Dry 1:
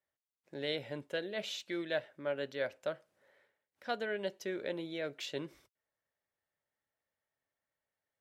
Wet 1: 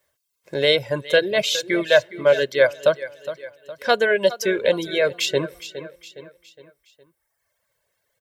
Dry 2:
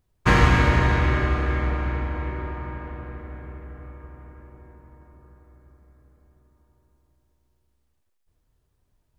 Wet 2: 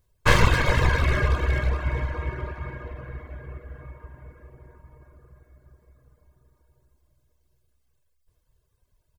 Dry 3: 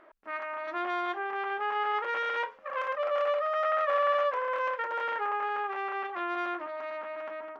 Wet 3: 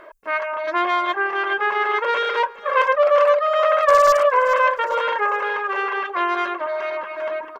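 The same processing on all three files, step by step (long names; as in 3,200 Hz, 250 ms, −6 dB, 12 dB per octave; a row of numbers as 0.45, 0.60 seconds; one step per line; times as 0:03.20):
wavefolder on the positive side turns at −18.5 dBFS
high-shelf EQ 4,900 Hz +4 dB
on a send: repeating echo 413 ms, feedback 44%, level −12 dB
on the sum: reverb reduction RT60 1.1 s
comb filter 1.9 ms, depth 49%
normalise the peak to −3 dBFS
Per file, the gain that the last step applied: +17.5, +0.5, +12.5 decibels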